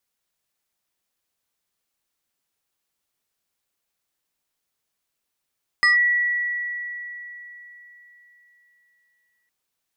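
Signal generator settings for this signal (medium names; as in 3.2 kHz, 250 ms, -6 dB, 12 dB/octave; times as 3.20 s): FM tone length 3.66 s, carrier 1.94 kHz, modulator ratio 1.62, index 0.68, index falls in 0.14 s linear, decay 3.81 s, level -12.5 dB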